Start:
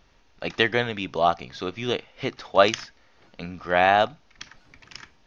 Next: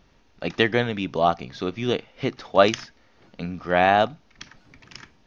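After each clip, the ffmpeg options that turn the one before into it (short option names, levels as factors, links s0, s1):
-af "equalizer=f=190:w=0.51:g=6.5,volume=0.891"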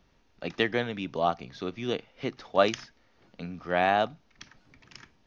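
-filter_complex "[0:a]acrossover=split=120|2500[s0][s1][s2];[s0]alimiter=level_in=7.5:limit=0.0631:level=0:latency=1,volume=0.133[s3];[s3][s1][s2]amix=inputs=3:normalize=0,aeval=exprs='0.794*(cos(1*acos(clip(val(0)/0.794,-1,1)))-cos(1*PI/2))+0.00562*(cos(7*acos(clip(val(0)/0.794,-1,1)))-cos(7*PI/2))':c=same,volume=0.501"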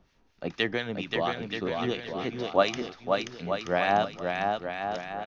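-filter_complex "[0:a]acrossover=split=1400[s0][s1];[s0]aeval=exprs='val(0)*(1-0.7/2+0.7/2*cos(2*PI*4.3*n/s))':c=same[s2];[s1]aeval=exprs='val(0)*(1-0.7/2-0.7/2*cos(2*PI*4.3*n/s))':c=same[s3];[s2][s3]amix=inputs=2:normalize=0,asplit=2[s4][s5];[s5]aecho=0:1:530|927.5|1226|1449|1617:0.631|0.398|0.251|0.158|0.1[s6];[s4][s6]amix=inputs=2:normalize=0,volume=1.33"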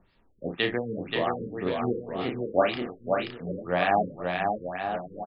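-af "aecho=1:1:33|62:0.562|0.211,afftfilt=real='re*lt(b*sr/1024,520*pow(5200/520,0.5+0.5*sin(2*PI*1.9*pts/sr)))':imag='im*lt(b*sr/1024,520*pow(5200/520,0.5+0.5*sin(2*PI*1.9*pts/sr)))':win_size=1024:overlap=0.75"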